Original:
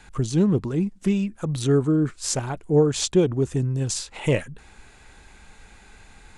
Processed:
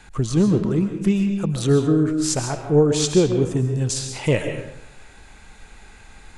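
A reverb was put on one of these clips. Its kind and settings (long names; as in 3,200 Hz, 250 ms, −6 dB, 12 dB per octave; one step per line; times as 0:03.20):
comb and all-pass reverb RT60 0.77 s, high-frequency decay 0.75×, pre-delay 90 ms, DRR 5.5 dB
level +2 dB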